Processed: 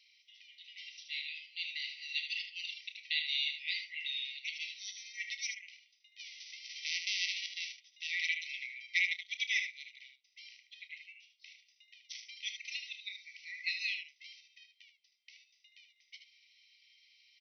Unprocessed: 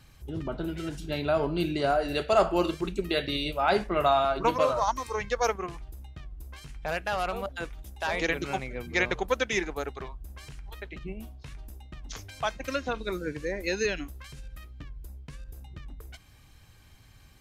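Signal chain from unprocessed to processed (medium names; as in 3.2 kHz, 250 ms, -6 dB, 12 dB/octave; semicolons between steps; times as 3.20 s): 6.18–7.71 s: formants flattened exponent 0.3; brick-wall FIR band-pass 1.9–6.1 kHz; early reflections 31 ms -13 dB, 76 ms -8 dB; trim -1 dB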